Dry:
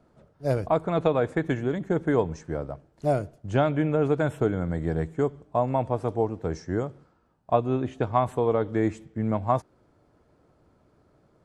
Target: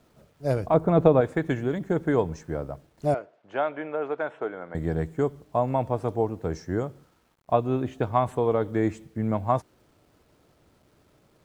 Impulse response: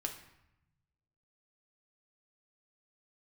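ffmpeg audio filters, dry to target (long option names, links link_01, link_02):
-filter_complex "[0:a]asettb=1/sr,asplit=3[link_01][link_02][link_03];[link_01]atrim=end=0.744[link_04];[link_02]atrim=start=0.74:end=1.21,asetpts=PTS-STARTPTS,afade=type=in:duration=0.004:curve=qsin,afade=type=out:start_time=0.466:duration=0.004:curve=qsin,tiltshelf=frequency=1300:gain=7[link_05];[link_03]atrim=start=1.206[link_06];[link_04][link_05]acrossfade=duration=0.004:curve1=hsin:curve2=qsin[link_07];[link_07][link_06]acrossfade=duration=0.004:curve1=qsin:curve2=hsin,acrusher=bits=10:mix=0:aa=0.000001,asettb=1/sr,asplit=3[link_08][link_09][link_10];[link_08]atrim=end=3.144[link_11];[link_09]atrim=start=3.14:end=4.75,asetpts=PTS-STARTPTS,afade=type=in:duration=0.004:curve=qsin,afade=type=out:start_time=1.606:duration=0.004:curve=qsin,highpass=560,lowpass=2400[link_12];[link_10]atrim=start=4.746[link_13];[link_11][link_12]acrossfade=duration=0.004:curve1=hsin:curve2=qsin[link_14];[link_14][link_13]acrossfade=duration=0.004:curve1=qsin:curve2=hsin"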